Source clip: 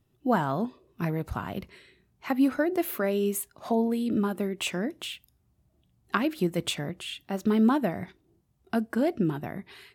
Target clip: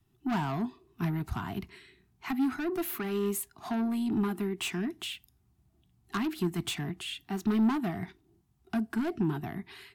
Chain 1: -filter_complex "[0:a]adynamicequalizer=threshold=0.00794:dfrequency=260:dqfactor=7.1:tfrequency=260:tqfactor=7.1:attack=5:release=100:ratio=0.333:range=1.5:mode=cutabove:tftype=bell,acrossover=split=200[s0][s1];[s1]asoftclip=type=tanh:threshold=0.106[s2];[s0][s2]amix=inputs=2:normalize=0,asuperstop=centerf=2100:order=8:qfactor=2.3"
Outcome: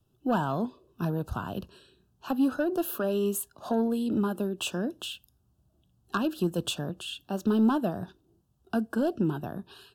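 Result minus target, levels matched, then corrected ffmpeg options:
saturation: distortion -9 dB; 2 kHz band -2.5 dB
-filter_complex "[0:a]adynamicequalizer=threshold=0.00794:dfrequency=260:dqfactor=7.1:tfrequency=260:tqfactor=7.1:attack=5:release=100:ratio=0.333:range=1.5:mode=cutabove:tftype=bell,acrossover=split=200[s0][s1];[s1]asoftclip=type=tanh:threshold=0.0398[s2];[s0][s2]amix=inputs=2:normalize=0,asuperstop=centerf=530:order=8:qfactor=2.3"

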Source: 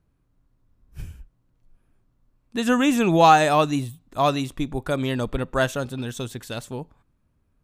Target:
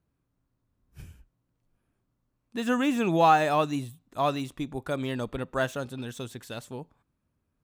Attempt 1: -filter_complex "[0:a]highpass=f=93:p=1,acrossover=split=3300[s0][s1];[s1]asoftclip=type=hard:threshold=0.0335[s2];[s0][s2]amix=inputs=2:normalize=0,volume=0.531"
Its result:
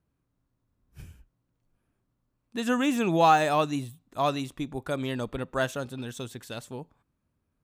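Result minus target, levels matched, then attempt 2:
hard clipper: distortion -7 dB
-filter_complex "[0:a]highpass=f=93:p=1,acrossover=split=3300[s0][s1];[s1]asoftclip=type=hard:threshold=0.0126[s2];[s0][s2]amix=inputs=2:normalize=0,volume=0.531"

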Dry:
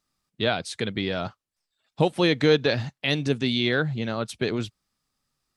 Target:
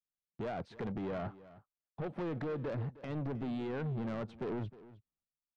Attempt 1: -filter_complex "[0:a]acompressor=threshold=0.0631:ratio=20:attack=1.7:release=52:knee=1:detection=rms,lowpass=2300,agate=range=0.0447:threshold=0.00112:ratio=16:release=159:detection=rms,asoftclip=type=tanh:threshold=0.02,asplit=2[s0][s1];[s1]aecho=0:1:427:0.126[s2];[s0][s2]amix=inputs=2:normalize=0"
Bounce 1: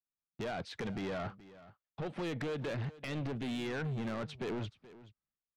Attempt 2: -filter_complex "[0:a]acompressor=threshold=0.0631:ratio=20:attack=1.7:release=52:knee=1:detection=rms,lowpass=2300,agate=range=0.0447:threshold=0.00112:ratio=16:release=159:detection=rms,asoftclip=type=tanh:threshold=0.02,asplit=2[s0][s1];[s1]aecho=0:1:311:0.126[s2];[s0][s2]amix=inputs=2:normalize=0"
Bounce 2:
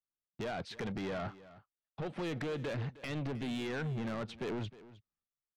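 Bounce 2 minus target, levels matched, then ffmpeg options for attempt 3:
2 kHz band +6.0 dB
-filter_complex "[0:a]acompressor=threshold=0.0631:ratio=20:attack=1.7:release=52:knee=1:detection=rms,lowpass=1000,agate=range=0.0447:threshold=0.00112:ratio=16:release=159:detection=rms,asoftclip=type=tanh:threshold=0.02,asplit=2[s0][s1];[s1]aecho=0:1:311:0.126[s2];[s0][s2]amix=inputs=2:normalize=0"

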